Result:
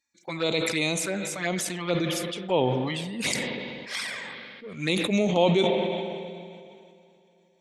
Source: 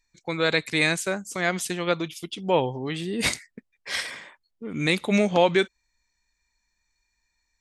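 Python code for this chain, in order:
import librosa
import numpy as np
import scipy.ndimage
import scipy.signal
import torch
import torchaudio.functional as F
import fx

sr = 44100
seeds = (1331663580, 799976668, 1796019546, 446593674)

y = scipy.signal.sosfilt(scipy.signal.butter(2, 150.0, 'highpass', fs=sr, output='sos'), x)
y = fx.env_flanger(y, sr, rest_ms=3.6, full_db=-20.0)
y = fx.rev_spring(y, sr, rt60_s=3.9, pass_ms=(40, 46, 52), chirp_ms=25, drr_db=14.0)
y = fx.sustainer(y, sr, db_per_s=25.0)
y = y * librosa.db_to_amplitude(-1.5)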